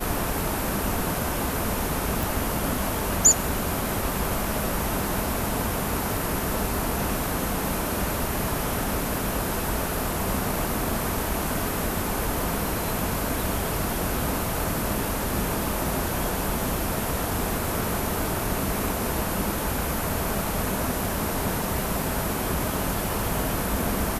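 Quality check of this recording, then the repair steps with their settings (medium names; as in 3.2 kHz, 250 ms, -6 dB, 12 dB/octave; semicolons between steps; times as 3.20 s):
2.23 s: pop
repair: de-click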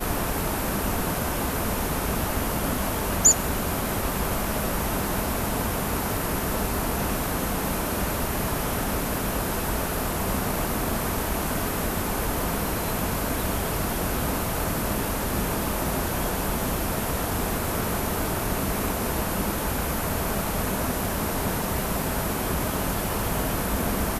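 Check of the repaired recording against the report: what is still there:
nothing left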